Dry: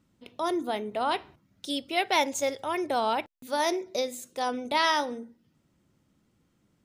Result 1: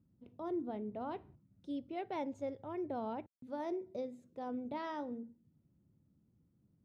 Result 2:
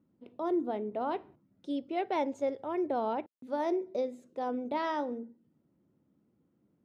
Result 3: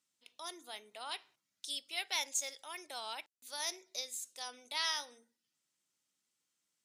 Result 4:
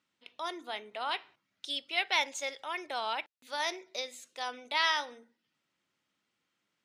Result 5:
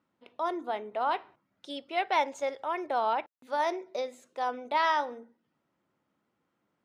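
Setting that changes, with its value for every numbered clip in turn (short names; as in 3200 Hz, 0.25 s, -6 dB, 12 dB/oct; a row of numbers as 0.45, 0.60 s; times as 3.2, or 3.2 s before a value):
band-pass, frequency: 110, 310, 8000, 2700, 1000 Hz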